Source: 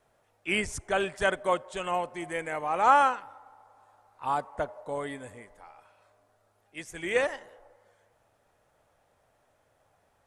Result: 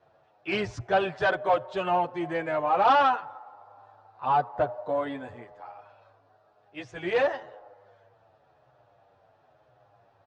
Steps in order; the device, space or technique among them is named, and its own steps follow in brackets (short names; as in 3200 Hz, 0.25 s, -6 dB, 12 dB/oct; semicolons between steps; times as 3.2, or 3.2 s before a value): barber-pole flanger into a guitar amplifier (endless flanger 8.6 ms -0.97 Hz; soft clip -25 dBFS, distortion -10 dB; speaker cabinet 90–4300 Hz, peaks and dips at 120 Hz +9 dB, 220 Hz -7 dB, 710 Hz +5 dB, 2100 Hz -8 dB, 3200 Hz -4 dB); gain +8 dB